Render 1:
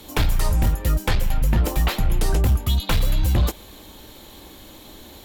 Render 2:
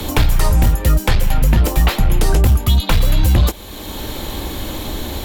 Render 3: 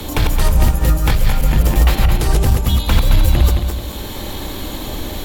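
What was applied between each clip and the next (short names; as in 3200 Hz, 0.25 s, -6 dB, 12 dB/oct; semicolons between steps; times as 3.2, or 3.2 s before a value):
three-band squash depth 70%; gain +6 dB
regenerating reverse delay 0.109 s, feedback 62%, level -3 dB; gain -3 dB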